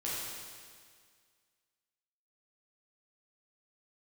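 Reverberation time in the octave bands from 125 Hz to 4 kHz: 1.9, 1.9, 1.9, 1.9, 1.9, 1.9 s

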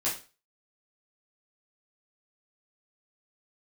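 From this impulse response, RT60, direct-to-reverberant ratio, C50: 0.35 s, -8.5 dB, 7.5 dB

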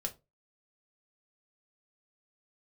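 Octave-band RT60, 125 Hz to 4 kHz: 0.35, 0.30, 0.25, 0.20, 0.20, 0.15 s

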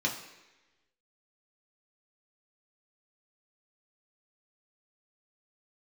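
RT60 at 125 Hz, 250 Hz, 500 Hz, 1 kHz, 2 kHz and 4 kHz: 0.80, 1.0, 1.1, 1.0, 1.2, 1.1 s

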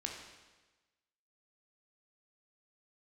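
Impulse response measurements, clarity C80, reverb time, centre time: 5.5 dB, 1.2 s, 47 ms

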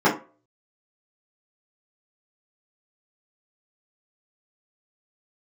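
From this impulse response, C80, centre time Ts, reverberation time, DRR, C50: 16.0 dB, 23 ms, 0.35 s, -9.5 dB, 10.0 dB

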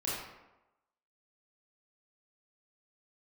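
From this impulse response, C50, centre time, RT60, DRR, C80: -1.0 dB, 75 ms, 1.0 s, -8.0 dB, 3.0 dB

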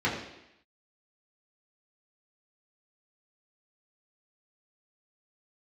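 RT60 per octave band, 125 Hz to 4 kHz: 0.70, 0.85, 0.80, 0.85, 0.90, 0.90 s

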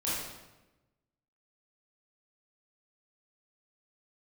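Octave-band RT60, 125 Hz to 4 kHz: 1.4, 1.3, 1.1, 1.0, 0.90, 0.80 s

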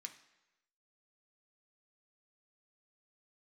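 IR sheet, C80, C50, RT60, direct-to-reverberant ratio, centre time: 14.0 dB, 11.5 dB, 1.0 s, 4.0 dB, 11 ms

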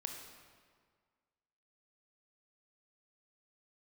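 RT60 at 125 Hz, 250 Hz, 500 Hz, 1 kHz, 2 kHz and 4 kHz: 1.8, 1.8, 1.8, 1.8, 1.5, 1.3 s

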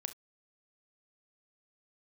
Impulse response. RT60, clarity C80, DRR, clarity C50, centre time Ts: not exponential, 43.0 dB, 9.5 dB, 15.0 dB, 5 ms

